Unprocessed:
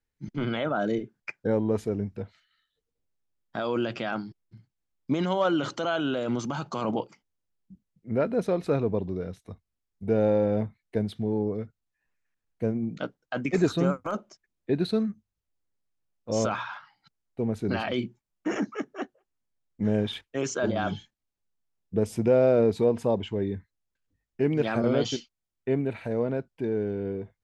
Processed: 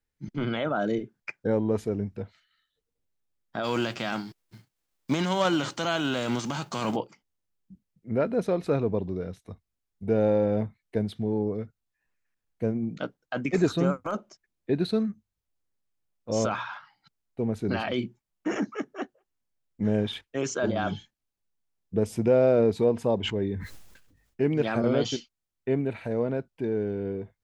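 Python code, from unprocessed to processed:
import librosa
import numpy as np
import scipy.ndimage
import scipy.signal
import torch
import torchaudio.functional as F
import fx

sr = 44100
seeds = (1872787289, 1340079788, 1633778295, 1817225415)

y = fx.envelope_flatten(x, sr, power=0.6, at=(3.63, 6.95), fade=0.02)
y = fx.sustainer(y, sr, db_per_s=53.0, at=(23.23, 24.41), fade=0.02)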